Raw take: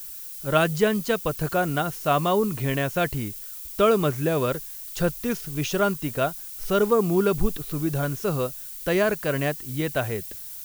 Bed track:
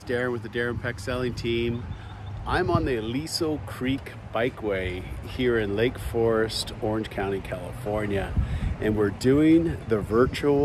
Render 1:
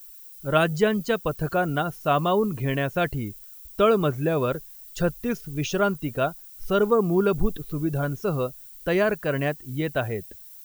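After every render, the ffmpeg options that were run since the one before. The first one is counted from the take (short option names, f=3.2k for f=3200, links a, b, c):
-af "afftdn=nr=11:nf=-38"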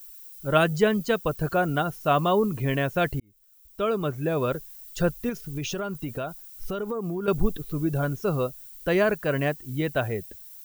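-filter_complex "[0:a]asettb=1/sr,asplit=3[a][b][c];[a]atrim=end=5.294[d];[b]atrim=start=5.29:end=7.28,asetpts=PTS-STARTPTS,afade=t=in:d=0.004:c=qsin,afade=t=out:st=1.986:d=0.004:c=qsin,acompressor=threshold=-26dB:ratio=10:attack=3.2:release=140:knee=1:detection=peak[e];[c]atrim=start=7.276[f];[d][e]acrossfade=d=0.004:c1=hsin:c2=qsin[g];[g][f]acrossfade=d=0.004:c1=qsin:c2=hsin,asplit=2[h][i];[h]atrim=end=3.2,asetpts=PTS-STARTPTS,afade=t=out:st=3.196:d=0.004:c=hsin[j];[i]atrim=start=3.2,asetpts=PTS-STARTPTS,afade=t=in:d=1.45[k];[j][k]concat=n=2:v=0:a=1"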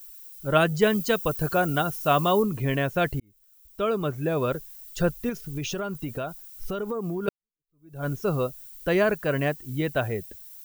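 -filter_complex "[0:a]asettb=1/sr,asplit=3[a][b][c];[a]atrim=end=0.824[d];[b]atrim=start=0.82:end=2.43,asetpts=PTS-STARTPTS,afade=t=in:d=0.004:c=qsin,afade=t=out:st=1.606:d=0.004:c=qsin,highshelf=f=4.3k:g=8.5[e];[c]atrim=start=2.426[f];[d][e]acrossfade=d=0.004:c1=hsin:c2=qsin[g];[g][f]acrossfade=d=0.004:c1=qsin:c2=hsin,asplit=2[h][i];[h]atrim=end=7.29,asetpts=PTS-STARTPTS,afade=t=out:st=7.286:d=0.004:c=hsin[j];[i]atrim=start=7.29,asetpts=PTS-STARTPTS,afade=t=in:d=0.78:c=exp[k];[j][k]concat=n=2:v=0:a=1"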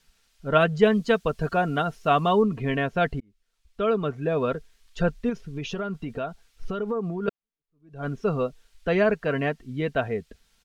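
-af "lowpass=3.6k,aecho=1:1:4.4:0.41"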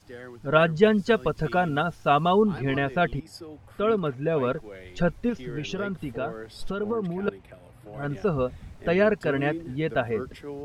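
-filter_complex "[1:a]volume=-15.5dB[a];[0:a][a]amix=inputs=2:normalize=0"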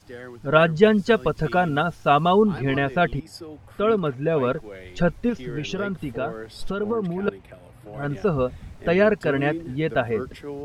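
-af "volume=3dB"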